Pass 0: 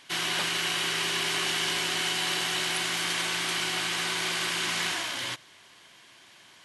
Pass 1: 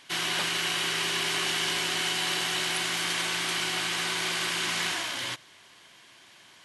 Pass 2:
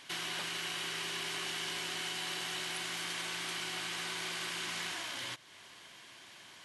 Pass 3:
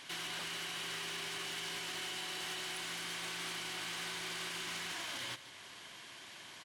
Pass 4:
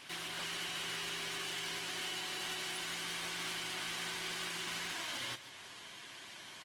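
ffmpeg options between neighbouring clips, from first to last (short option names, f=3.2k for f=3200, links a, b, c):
-af anull
-af "acompressor=threshold=-44dB:ratio=2"
-af "alimiter=level_in=9.5dB:limit=-24dB:level=0:latency=1:release=52,volume=-9.5dB,asoftclip=type=hard:threshold=-39dB,aecho=1:1:151:0.2,volume=2dB"
-af "volume=1dB" -ar 48000 -c:a libopus -b:a 20k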